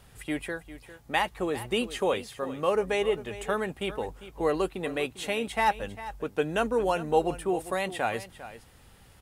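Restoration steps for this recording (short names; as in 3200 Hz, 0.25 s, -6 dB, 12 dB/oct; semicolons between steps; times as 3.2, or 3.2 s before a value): inverse comb 0.4 s -14.5 dB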